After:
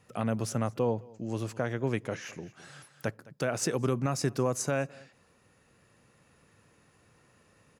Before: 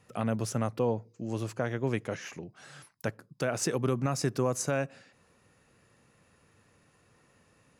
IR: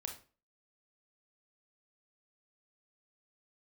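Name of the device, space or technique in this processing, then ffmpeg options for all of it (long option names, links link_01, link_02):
ducked delay: -filter_complex "[0:a]asplit=3[link_01][link_02][link_03];[link_02]adelay=210,volume=-5dB[link_04];[link_03]apad=whole_len=353120[link_05];[link_04][link_05]sidechaincompress=threshold=-42dB:ratio=12:attack=6.3:release=1060[link_06];[link_01][link_06]amix=inputs=2:normalize=0"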